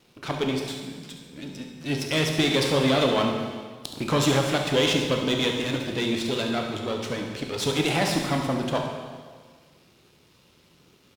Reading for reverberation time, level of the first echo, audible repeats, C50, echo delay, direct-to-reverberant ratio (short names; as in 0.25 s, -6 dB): 1.6 s, -10.5 dB, 1, 3.0 dB, 70 ms, 1.5 dB